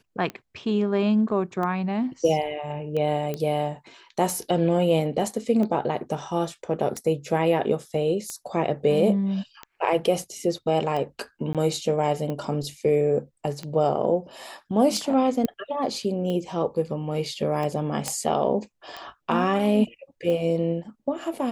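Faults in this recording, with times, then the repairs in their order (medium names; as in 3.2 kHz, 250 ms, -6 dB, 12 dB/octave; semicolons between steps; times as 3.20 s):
tick 45 rpm -19 dBFS
3.34 s: pop -16 dBFS
11.53–11.55 s: dropout 17 ms
15.45 s: pop -13 dBFS
18.08 s: pop -11 dBFS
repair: de-click; interpolate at 11.53 s, 17 ms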